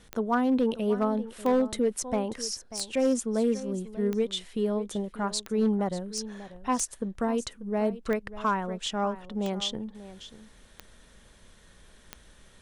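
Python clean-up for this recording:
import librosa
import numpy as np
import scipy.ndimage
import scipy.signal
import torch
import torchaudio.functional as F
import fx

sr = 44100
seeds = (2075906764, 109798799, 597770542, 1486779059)

y = fx.fix_declip(x, sr, threshold_db=-18.0)
y = fx.fix_declick_ar(y, sr, threshold=10.0)
y = fx.fix_echo_inverse(y, sr, delay_ms=590, level_db=-15.0)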